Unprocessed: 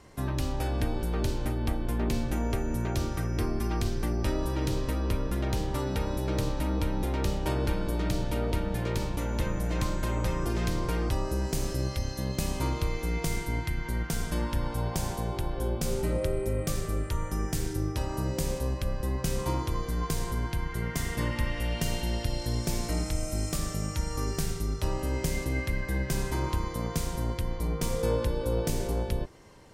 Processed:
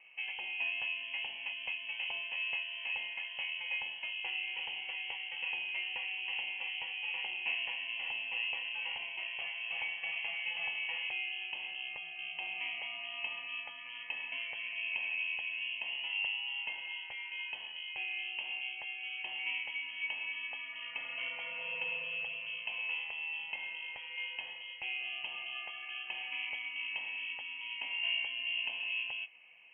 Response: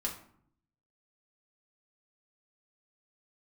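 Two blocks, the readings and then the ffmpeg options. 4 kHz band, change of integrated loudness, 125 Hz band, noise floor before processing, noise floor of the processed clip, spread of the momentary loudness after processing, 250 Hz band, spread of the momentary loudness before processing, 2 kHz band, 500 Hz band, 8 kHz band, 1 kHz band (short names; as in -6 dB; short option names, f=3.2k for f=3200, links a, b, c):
+4.0 dB, -5.5 dB, under -40 dB, -37 dBFS, -46 dBFS, 6 LU, under -35 dB, 3 LU, +6.0 dB, -25.5 dB, under -40 dB, -14.0 dB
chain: -filter_complex "[0:a]asplit=3[a][b][c];[a]bandpass=f=730:t=q:w=8,volume=0dB[d];[b]bandpass=f=1.09k:t=q:w=8,volume=-6dB[e];[c]bandpass=f=2.44k:t=q:w=8,volume=-9dB[f];[d][e][f]amix=inputs=3:normalize=0,lowpass=f=2.8k:t=q:w=0.5098,lowpass=f=2.8k:t=q:w=0.6013,lowpass=f=2.8k:t=q:w=0.9,lowpass=f=2.8k:t=q:w=2.563,afreqshift=-3300,volume=8.5dB"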